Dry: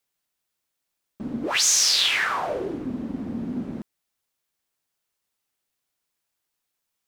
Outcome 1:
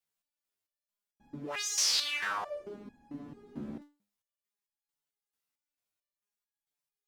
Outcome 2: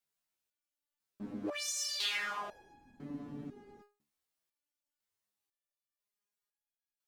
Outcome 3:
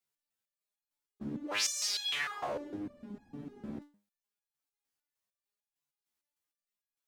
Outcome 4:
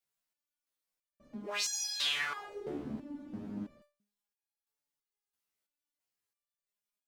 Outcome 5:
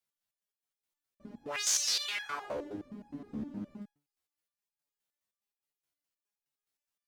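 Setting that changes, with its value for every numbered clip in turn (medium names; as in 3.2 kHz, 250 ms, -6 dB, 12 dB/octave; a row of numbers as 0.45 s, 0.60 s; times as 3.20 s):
resonator arpeggio, rate: 4.5 Hz, 2 Hz, 6.6 Hz, 3 Hz, 9.6 Hz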